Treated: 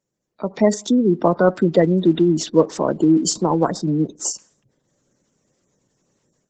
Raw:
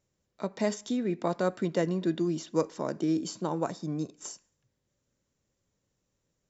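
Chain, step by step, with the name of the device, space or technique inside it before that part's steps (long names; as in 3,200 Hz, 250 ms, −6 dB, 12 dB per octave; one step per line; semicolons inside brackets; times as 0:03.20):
noise-suppressed video call (high-pass filter 130 Hz 24 dB per octave; gate on every frequency bin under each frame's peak −20 dB strong; automatic gain control gain up to 15.5 dB; Opus 12 kbit/s 48,000 Hz)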